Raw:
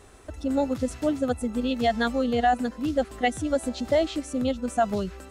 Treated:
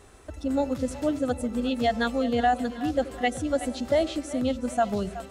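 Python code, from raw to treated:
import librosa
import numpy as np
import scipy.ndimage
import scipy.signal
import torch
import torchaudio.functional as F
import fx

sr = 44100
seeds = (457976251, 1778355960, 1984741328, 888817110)

y = fx.echo_split(x, sr, split_hz=550.0, low_ms=83, high_ms=372, feedback_pct=52, wet_db=-14)
y = y * 10.0 ** (-1.0 / 20.0)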